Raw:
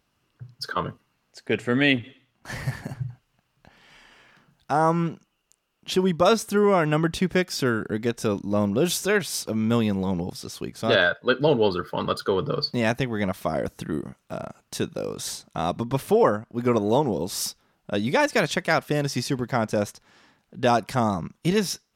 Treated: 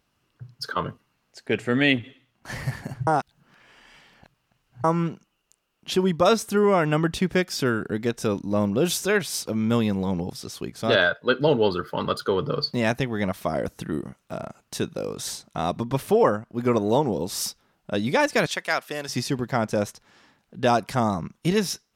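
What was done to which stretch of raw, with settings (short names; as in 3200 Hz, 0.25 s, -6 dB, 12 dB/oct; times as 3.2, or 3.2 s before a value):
3.07–4.84 reverse
18.46–19.09 HPF 920 Hz 6 dB/oct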